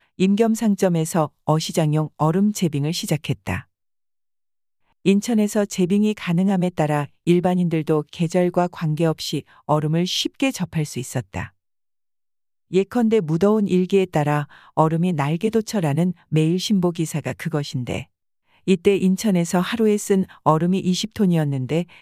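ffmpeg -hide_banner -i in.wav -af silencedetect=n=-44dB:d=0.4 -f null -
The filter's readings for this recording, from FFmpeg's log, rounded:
silence_start: 3.63
silence_end: 5.05 | silence_duration: 1.42
silence_start: 11.49
silence_end: 12.71 | silence_duration: 1.22
silence_start: 18.04
silence_end: 18.67 | silence_duration: 0.63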